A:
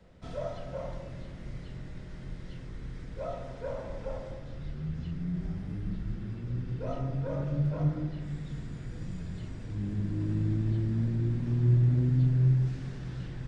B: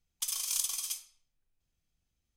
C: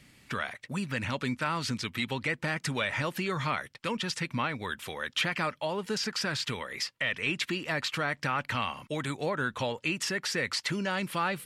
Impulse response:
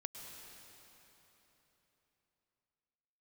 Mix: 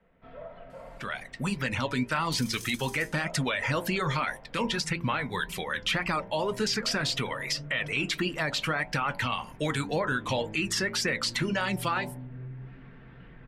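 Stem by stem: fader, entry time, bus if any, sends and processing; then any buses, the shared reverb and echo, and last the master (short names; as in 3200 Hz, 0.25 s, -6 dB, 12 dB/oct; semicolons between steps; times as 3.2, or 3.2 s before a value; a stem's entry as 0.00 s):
+2.0 dB, 0.00 s, bus A, no send, LPF 2600 Hz 24 dB/oct; comb 4.4 ms, depth 40%
-5.0 dB, 2.10 s, bus A, no send, dry
-2.0 dB, 0.70 s, no bus, no send, reverb removal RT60 0.75 s; AGC gain up to 11.5 dB
bus A: 0.0 dB, low shelf 350 Hz -10 dB; compressor, threshold -33 dBFS, peak gain reduction 5 dB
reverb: off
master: de-hum 56.96 Hz, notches 18; flange 1.8 Hz, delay 4.9 ms, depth 3.8 ms, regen -66%; limiter -18.5 dBFS, peak gain reduction 6 dB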